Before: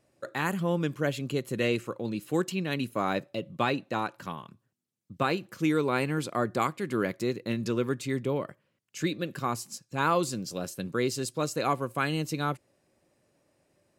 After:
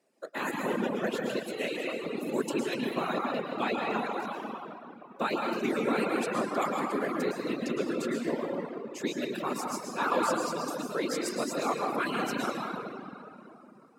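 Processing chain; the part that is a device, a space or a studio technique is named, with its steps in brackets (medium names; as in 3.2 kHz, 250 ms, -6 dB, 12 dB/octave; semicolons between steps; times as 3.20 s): whispering ghost (whisper effect; high-pass 200 Hz 24 dB/octave; reverberation RT60 3.1 s, pre-delay 102 ms, DRR -3 dB); reverb removal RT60 0.95 s; 1.39–2.06 s: bass shelf 450 Hz -8 dB; trim -3 dB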